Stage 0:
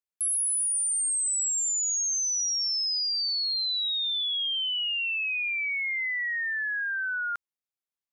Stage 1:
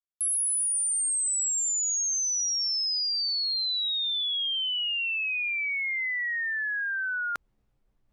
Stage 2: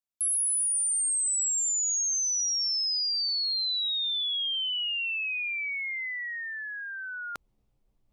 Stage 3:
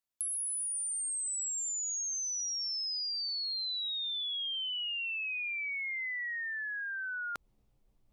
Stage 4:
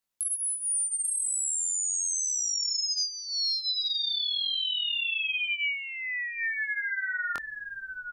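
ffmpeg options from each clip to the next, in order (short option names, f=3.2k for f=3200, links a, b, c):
-af "anlmdn=0.158,areverse,acompressor=mode=upward:threshold=-31dB:ratio=2.5,areverse"
-af "equalizer=f=1.6k:t=o:w=0.8:g=-7.5"
-af "acompressor=threshold=-36dB:ratio=6,volume=1dB"
-af "aecho=1:1:842:0.447,flanger=delay=20:depth=6:speed=0.37,volume=8.5dB"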